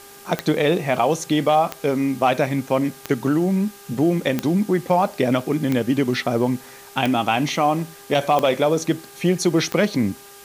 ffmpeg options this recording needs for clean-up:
ffmpeg -i in.wav -af "adeclick=threshold=4,bandreject=frequency=401.2:width_type=h:width=4,bandreject=frequency=802.4:width_type=h:width=4,bandreject=frequency=1203.6:width_type=h:width=4,bandreject=frequency=1604.8:width_type=h:width=4,afwtdn=0.0063" out.wav

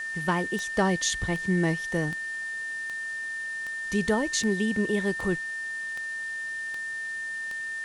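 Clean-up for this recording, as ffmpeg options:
ffmpeg -i in.wav -af "adeclick=threshold=4,bandreject=frequency=1800:width=30,afwtdn=0.004" out.wav

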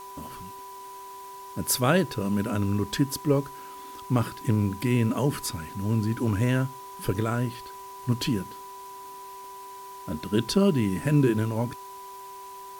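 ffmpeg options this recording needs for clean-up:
ffmpeg -i in.wav -af "bandreject=frequency=389.1:width_type=h:width=4,bandreject=frequency=778.2:width_type=h:width=4,bandreject=frequency=1167.3:width_type=h:width=4,bandreject=frequency=1556.4:width_type=h:width=4,bandreject=frequency=1945.5:width_type=h:width=4,bandreject=frequency=990:width=30,afwtdn=0.0028" out.wav

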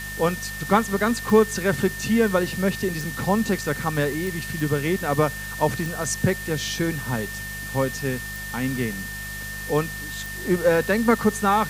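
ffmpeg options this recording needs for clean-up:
ffmpeg -i in.wav -af "adeclick=threshold=4,bandreject=frequency=50.6:width_type=h:width=4,bandreject=frequency=101.2:width_type=h:width=4,bandreject=frequency=151.8:width_type=h:width=4,bandreject=frequency=202.4:width_type=h:width=4,bandreject=frequency=1800:width=30,afwtdn=0.013" out.wav

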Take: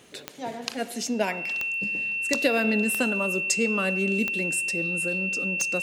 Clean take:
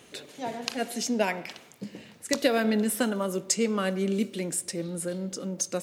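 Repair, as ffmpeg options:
ffmpeg -i in.wav -af "adeclick=threshold=4,bandreject=frequency=2700:width=30" out.wav

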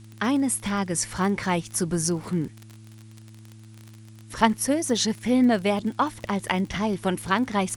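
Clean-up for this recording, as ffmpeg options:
ffmpeg -i in.wav -af "adeclick=threshold=4,bandreject=frequency=109.6:width_type=h:width=4,bandreject=frequency=219.2:width_type=h:width=4,bandreject=frequency=328.8:width_type=h:width=4,agate=range=-21dB:threshold=-38dB" out.wav

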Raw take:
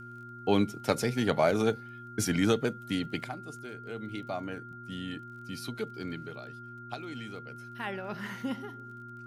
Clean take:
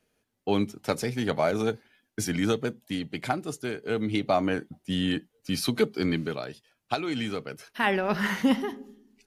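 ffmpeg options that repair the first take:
ffmpeg -i in.wav -af "adeclick=threshold=4,bandreject=frequency=120:width_type=h:width=4,bandreject=frequency=240:width_type=h:width=4,bandreject=frequency=360:width_type=h:width=4,bandreject=frequency=1400:width=30,asetnsamples=nb_out_samples=441:pad=0,asendcmd='3.24 volume volume 12dB',volume=0dB" out.wav

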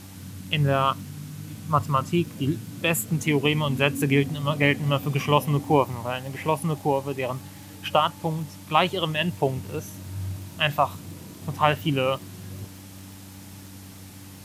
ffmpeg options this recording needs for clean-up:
ffmpeg -i in.wav -af "adeclick=threshold=4,bandreject=frequency=96.1:width_type=h:width=4,bandreject=frequency=192.2:width_type=h:width=4,bandreject=frequency=288.3:width_type=h:width=4,afwtdn=0.004" out.wav

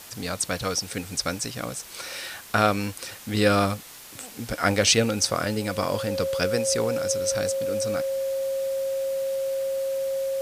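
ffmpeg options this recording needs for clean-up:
ffmpeg -i in.wav -af "adeclick=threshold=4,bandreject=frequency=540:width=30,afwtdn=0.0071" out.wav

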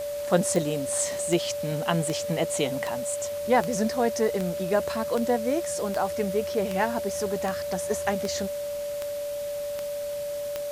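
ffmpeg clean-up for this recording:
ffmpeg -i in.wav -af "adeclick=threshold=4,bandreject=frequency=580:width=30,afwtdn=0.0063" out.wav

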